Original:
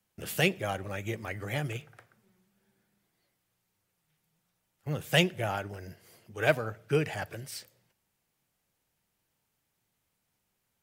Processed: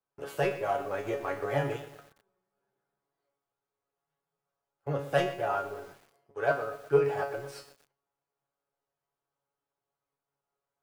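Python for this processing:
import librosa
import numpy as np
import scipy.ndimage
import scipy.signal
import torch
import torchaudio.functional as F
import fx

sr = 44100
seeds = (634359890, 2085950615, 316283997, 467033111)

y = fx.leveller(x, sr, passes=2)
y = fx.band_shelf(y, sr, hz=700.0, db=12.5, octaves=2.4)
y = fx.rider(y, sr, range_db=4, speed_s=0.5)
y = fx.high_shelf(y, sr, hz=7700.0, db=-8.5)
y = fx.comb_fb(y, sr, f0_hz=140.0, decay_s=0.34, harmonics='all', damping=0.0, mix_pct=90)
y = fx.echo_crushed(y, sr, ms=121, feedback_pct=55, bits=7, wet_db=-13)
y = y * librosa.db_to_amplitude(-4.5)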